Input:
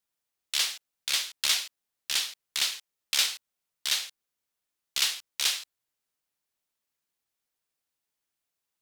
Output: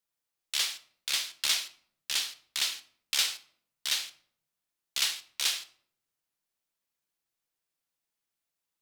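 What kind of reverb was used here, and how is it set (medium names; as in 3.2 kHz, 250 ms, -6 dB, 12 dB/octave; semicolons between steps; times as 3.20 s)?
simulated room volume 1000 m³, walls furnished, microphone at 0.74 m; trim -2.5 dB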